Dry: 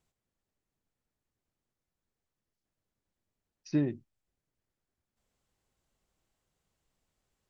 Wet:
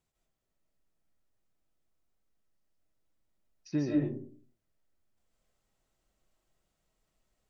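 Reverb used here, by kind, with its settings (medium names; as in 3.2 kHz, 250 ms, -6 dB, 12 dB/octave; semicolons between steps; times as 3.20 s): algorithmic reverb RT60 0.5 s, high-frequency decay 0.35×, pre-delay 110 ms, DRR -2.5 dB; trim -3 dB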